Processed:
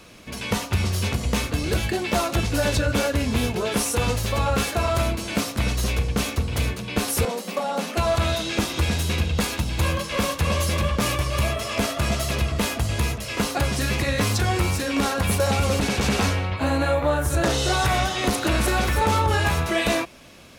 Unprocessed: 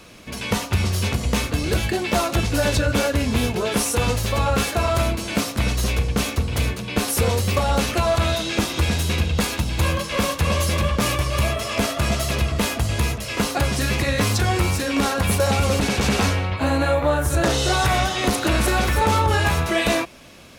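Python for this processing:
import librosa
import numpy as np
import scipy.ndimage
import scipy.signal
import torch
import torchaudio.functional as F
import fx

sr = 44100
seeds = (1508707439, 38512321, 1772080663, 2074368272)

y = fx.cheby_ripple_highpass(x, sr, hz=170.0, ripple_db=6, at=(7.25, 7.97))
y = y * librosa.db_to_amplitude(-2.0)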